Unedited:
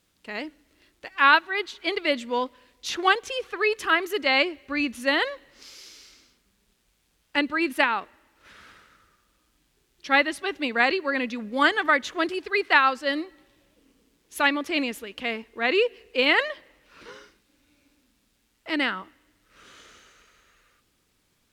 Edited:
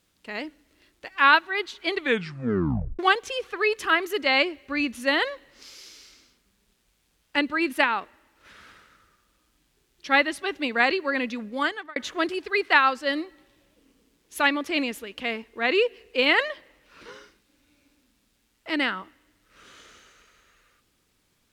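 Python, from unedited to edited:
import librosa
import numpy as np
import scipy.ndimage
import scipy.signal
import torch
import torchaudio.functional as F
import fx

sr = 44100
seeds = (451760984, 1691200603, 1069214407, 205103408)

y = fx.edit(x, sr, fx.tape_stop(start_s=1.92, length_s=1.07),
    fx.fade_out_span(start_s=11.37, length_s=0.59), tone=tone)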